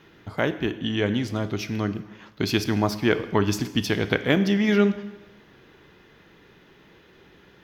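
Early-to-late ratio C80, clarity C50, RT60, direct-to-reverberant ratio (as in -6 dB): 15.0 dB, 13.5 dB, 1.1 s, 11.0 dB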